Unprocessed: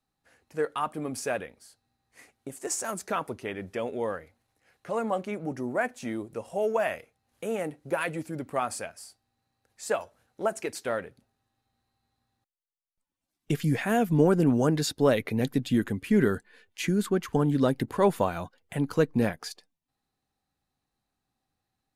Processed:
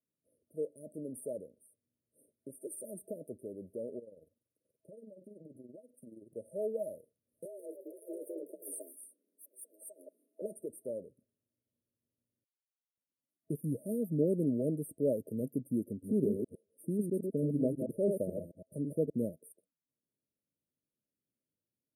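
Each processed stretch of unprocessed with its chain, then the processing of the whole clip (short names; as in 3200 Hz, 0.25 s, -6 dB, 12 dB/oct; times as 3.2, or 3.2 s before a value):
3.99–6.36 AM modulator 21 Hz, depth 55% + compressor 12:1, threshold -39 dBFS
7.45–10.42 negative-ratio compressor -36 dBFS + frequency shift +180 Hz + echoes that change speed 0.14 s, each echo +3 st, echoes 2, each echo -6 dB
15.9–19.1 reverse delay 0.109 s, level -4 dB + high shelf 11000 Hz -5 dB
whole clip: Bessel high-pass 160 Hz; FFT band-reject 650–8500 Hz; dynamic EQ 1900 Hz, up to -4 dB, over -45 dBFS, Q 0.73; gain -7 dB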